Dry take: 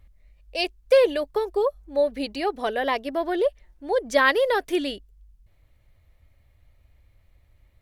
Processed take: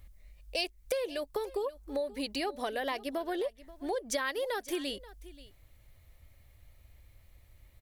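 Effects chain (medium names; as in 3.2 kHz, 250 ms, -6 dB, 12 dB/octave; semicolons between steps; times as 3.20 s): compression 6:1, threshold -32 dBFS, peak gain reduction 18 dB; treble shelf 4.9 kHz +11 dB; on a send: delay 532 ms -18.5 dB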